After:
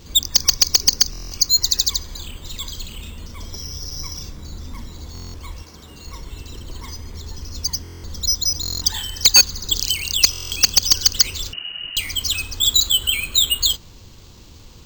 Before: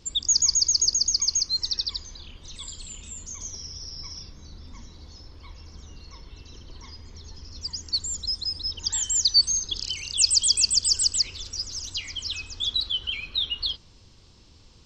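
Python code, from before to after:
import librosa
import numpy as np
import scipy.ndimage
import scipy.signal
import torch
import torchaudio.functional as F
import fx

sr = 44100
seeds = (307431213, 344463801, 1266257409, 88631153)

p1 = np.repeat(scipy.signal.resample_poly(x, 1, 4), 4)[:len(x)]
p2 = (np.mod(10.0 ** (13.5 / 20.0) * p1 + 1.0, 2.0) - 1.0) / 10.0 ** (13.5 / 20.0)
p3 = p1 + F.gain(torch.from_numpy(p2), -8.5).numpy()
p4 = fx.highpass(p3, sr, hz=fx.line((5.62, 350.0), (6.04, 150.0)), slope=6, at=(5.62, 6.04), fade=0.02)
p5 = fx.freq_invert(p4, sr, carrier_hz=2900, at=(11.53, 11.97))
p6 = fx.buffer_glitch(p5, sr, at_s=(1.11, 5.13, 7.83, 8.61, 10.31), block=1024, repeats=8)
y = F.gain(torch.from_numpy(p6), 7.5).numpy()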